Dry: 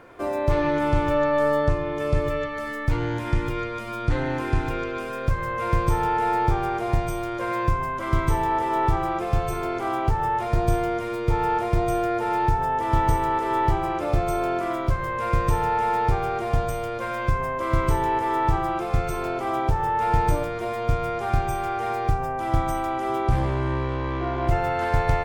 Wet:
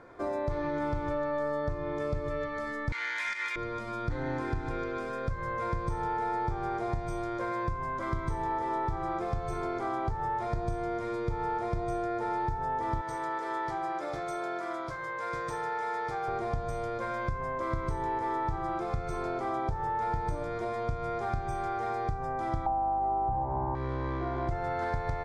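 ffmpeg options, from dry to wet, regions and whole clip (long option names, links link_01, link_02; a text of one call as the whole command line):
ffmpeg -i in.wav -filter_complex "[0:a]asettb=1/sr,asplit=3[link_01][link_02][link_03];[link_01]atrim=end=2.924[link_04];[link_02]atrim=start=2.92:end=3.56,asetpts=PTS-STARTPTS,afade=type=in:duration=0.004:curve=qsin,afade=type=out:start_time=0.636:duration=0.004:curve=qsin,acompressor=threshold=-24dB:ratio=4:attack=3.2:release=140:knee=1:detection=peak,highpass=frequency=2100:width_type=q:width=2.8,aeval=exprs='0.211*sin(PI/2*3.16*val(0)/0.211)':channel_layout=same[link_05];[link_03]atrim=start=3.556[link_06];[link_04][link_05]acrossfade=duration=0.004:curve1=hsin:curve2=qsin[link_07];[link_07][link_06]acrossfade=duration=0.004:curve1=qsin:curve2=hsin,asettb=1/sr,asplit=3[link_08][link_09][link_10];[link_08]atrim=end=13.014[link_11];[link_09]atrim=start=13.01:end=16.28,asetpts=PTS-STARTPTS,afade=type=in:duration=0.004:curve=qsin,afade=type=out:start_time=3.266:duration=0.004:curve=qsin,highpass=frequency=800:poles=1,aecho=1:1:6.3:0.36,atrim=end_sample=144207[link_12];[link_10]atrim=start=16.276[link_13];[link_11][link_12]acrossfade=duration=0.004:curve1=hsin:curve2=qsin[link_14];[link_14][link_13]acrossfade=duration=0.004:curve1=qsin:curve2=hsin,asettb=1/sr,asplit=3[link_15][link_16][link_17];[link_15]atrim=end=22.664[link_18];[link_16]atrim=start=22.66:end=23.75,asetpts=PTS-STARTPTS,afade=type=in:duration=0.004:curve=qsin,afade=type=out:start_time=1.086:duration=0.004:curve=qsin,lowpass=frequency=840:width_type=q:width=10,aeval=exprs='val(0)+0.0355*(sin(2*PI*50*n/s)+sin(2*PI*2*50*n/s)/2+sin(2*PI*3*50*n/s)/3+sin(2*PI*4*50*n/s)/4+sin(2*PI*5*50*n/s)/5)':channel_layout=same[link_19];[link_17]atrim=start=23.746[link_20];[link_18][link_19]acrossfade=duration=0.004:curve1=hsin:curve2=qsin[link_21];[link_21][link_20]acrossfade=duration=0.004:curve1=qsin:curve2=hsin,lowpass=6500,acompressor=threshold=-24dB:ratio=6,equalizer=frequency=2800:width_type=o:width=0.35:gain=-13.5,volume=-4dB" out.wav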